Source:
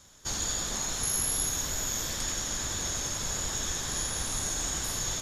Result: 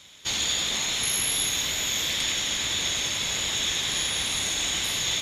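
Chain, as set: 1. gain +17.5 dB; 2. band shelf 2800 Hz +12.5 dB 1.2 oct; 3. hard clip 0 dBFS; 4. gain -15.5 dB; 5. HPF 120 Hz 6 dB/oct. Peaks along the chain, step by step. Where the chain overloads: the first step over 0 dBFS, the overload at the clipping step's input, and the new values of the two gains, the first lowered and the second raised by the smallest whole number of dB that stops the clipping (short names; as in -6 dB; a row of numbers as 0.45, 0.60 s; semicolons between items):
+0.5, +3.0, 0.0, -15.5, -14.5 dBFS; step 1, 3.0 dB; step 1 +14.5 dB, step 4 -12.5 dB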